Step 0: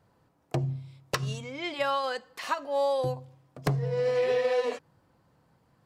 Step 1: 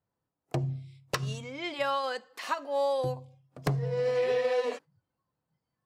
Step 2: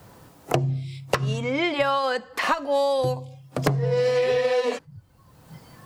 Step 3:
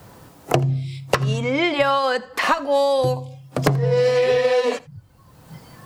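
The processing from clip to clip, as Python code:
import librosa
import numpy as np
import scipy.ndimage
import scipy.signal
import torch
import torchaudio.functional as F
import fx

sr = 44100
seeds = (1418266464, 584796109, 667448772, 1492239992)

y1 = fx.noise_reduce_blind(x, sr, reduce_db=18)
y1 = F.gain(torch.from_numpy(y1), -1.5).numpy()
y2 = fx.band_squash(y1, sr, depth_pct=100)
y2 = F.gain(torch.from_numpy(y2), 6.5).numpy()
y3 = y2 + 10.0 ** (-22.5 / 20.0) * np.pad(y2, (int(83 * sr / 1000.0), 0))[:len(y2)]
y3 = F.gain(torch.from_numpy(y3), 4.0).numpy()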